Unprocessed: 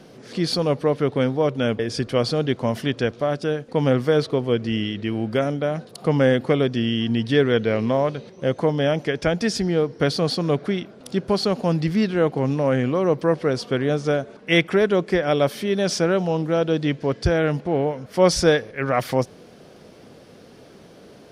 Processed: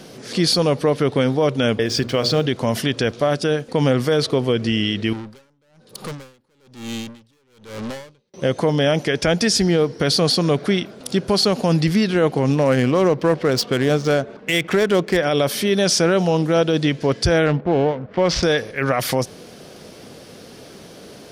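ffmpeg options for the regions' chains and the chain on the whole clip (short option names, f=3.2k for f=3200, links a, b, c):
-filter_complex "[0:a]asettb=1/sr,asplit=3[a][b][c];[a]atrim=end=1.864[d];[b]atrim=start=1.86:end=2.46,asetpts=PTS-STARTPTS,afade=t=in:d=0.004:c=qsin,afade=t=out:st=0.596:d=0.004:c=qsin,lowpass=6.1k,bandreject=f=60:t=h:w=6,bandreject=f=120:t=h:w=6,bandreject=f=180:t=h:w=6,bandreject=f=240:t=h:w=6,bandreject=f=300:t=h:w=6,bandreject=f=360:t=h:w=6,bandreject=f=420:t=h:w=6,bandreject=f=480:t=h:w=6,bandreject=f=540:t=h:w=6,bandreject=f=600:t=h:w=6,aeval=exprs='sgn(val(0))*max(abs(val(0))-0.00316,0)':c=same[e];[c]atrim=start=2.456[f];[d][e]acrossfade=d=0.004:c1=hsin:c2=qsin[g];[g][f]acrossfade=d=0.004:c1=qsin:c2=hsin,asettb=1/sr,asplit=3[h][i][j];[h]atrim=end=5.134[k];[i]atrim=start=5.13:end=8.34,asetpts=PTS-STARTPTS,afade=t=in:d=0.004:c=qsin,afade=t=out:st=3.206:d=0.004:c=qsin,aeval=exprs='(tanh(35.5*val(0)+0.35)-tanh(0.35))/35.5':c=same,asuperstop=centerf=690:order=4:qfactor=6.6,aeval=exprs='val(0)*pow(10,-36*(0.5-0.5*cos(2*PI*1.1*n/s))/20)':c=same[l];[j]atrim=start=8.336[m];[k][l]acrossfade=d=0.004:c1=hsin:c2=qsin[n];[n][m]acrossfade=d=0.004:c1=qsin:c2=hsin,asettb=1/sr,asplit=3[o][p][q];[o]atrim=end=12.524[r];[p]atrim=start=12.52:end=15.17,asetpts=PTS-STARTPTS,afade=t=in:d=0.004:c=qsin,afade=t=out:st=2.646:d=0.004:c=qsin,highshelf=f=8.4k:g=11,adynamicsmooth=sensitivity=5:basefreq=2.3k[s];[q]atrim=start=15.166[t];[r][s]acrossfade=d=0.004:c1=hsin:c2=qsin[u];[u][t]acrossfade=d=0.004:c1=qsin:c2=hsin,asettb=1/sr,asplit=3[v][w][x];[v]atrim=end=17.464[y];[w]atrim=start=17.46:end=18.43,asetpts=PTS-STARTPTS,afade=t=in:d=0.004:c=qsin,afade=t=out:st=0.966:d=0.004:c=qsin,adynamicsmooth=sensitivity=5:basefreq=900,lowpass=3.4k[z];[x]atrim=start=18.426[aa];[y][z]acrossfade=d=0.004:c1=hsin:c2=qsin[ab];[ab][aa]acrossfade=d=0.004:c1=qsin:c2=hsin,highshelf=f=3.3k:g=9,alimiter=level_in=12.5dB:limit=-1dB:release=50:level=0:latency=1,volume=-7.5dB"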